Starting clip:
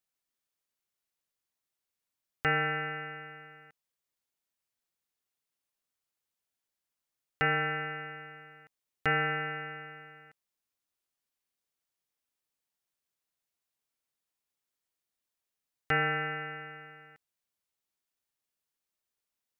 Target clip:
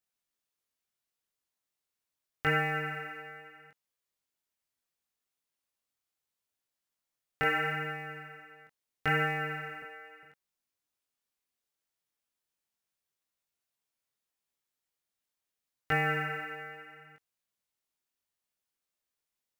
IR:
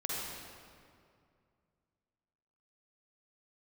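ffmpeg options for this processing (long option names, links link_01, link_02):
-filter_complex "[0:a]asettb=1/sr,asplit=3[link_01][link_02][link_03];[link_01]atrim=end=9.824[link_04];[link_02]atrim=start=9.82:end=10.23,asetpts=PTS-STARTPTS,afade=type=in:duration=0.004:curve=qsin,afade=type=out:start_time=0.406:duration=0.004:curve=qsin,highpass=frequency=270:width=0.5412,highpass=frequency=270:width=1.3066[link_05];[link_03]atrim=start=10.226[link_06];[link_04][link_05]acrossfade=duration=0.004:curve1=hsin:curve2=qsin[link_07];[link_07][link_06]acrossfade=duration=0.004:curve1=qsin:curve2=hsin,acrusher=bits=7:mode=log:mix=0:aa=0.000001,flanger=delay=19:depth=5.4:speed=0.75,volume=2.5dB"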